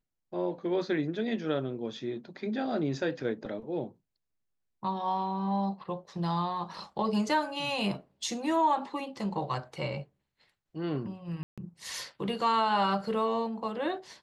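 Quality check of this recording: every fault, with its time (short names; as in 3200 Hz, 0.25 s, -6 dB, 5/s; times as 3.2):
11.43–11.58 gap 0.146 s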